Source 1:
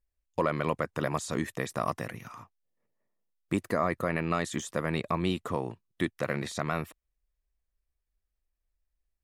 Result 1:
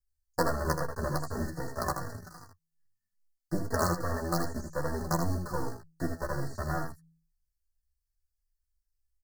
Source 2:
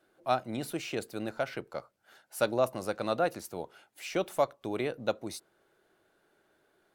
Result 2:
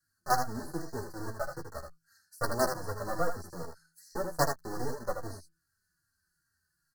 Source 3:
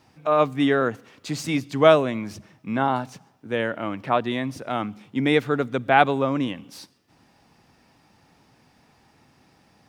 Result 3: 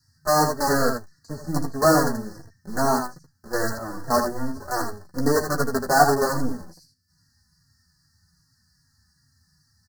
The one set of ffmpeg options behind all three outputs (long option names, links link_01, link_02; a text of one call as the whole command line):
ffmpeg -i in.wav -filter_complex "[0:a]bandreject=frequency=164.1:width_type=h:width=4,bandreject=frequency=328.2:width_type=h:width=4,acrossover=split=150|1800[link_01][link_02][link_03];[link_02]acrusher=bits=4:dc=4:mix=0:aa=0.000001[link_04];[link_03]acompressor=threshold=-53dB:ratio=10[link_05];[link_01][link_04][link_05]amix=inputs=3:normalize=0,asuperstop=centerf=2800:order=20:qfactor=1.2,asplit=2[link_06][link_07];[link_07]adelay=12,volume=-6.5dB[link_08];[link_06][link_08]amix=inputs=2:normalize=0,aecho=1:1:79:0.473,asplit=2[link_09][link_10];[link_10]adelay=3.7,afreqshift=-2.5[link_11];[link_09][link_11]amix=inputs=2:normalize=1,volume=3dB" out.wav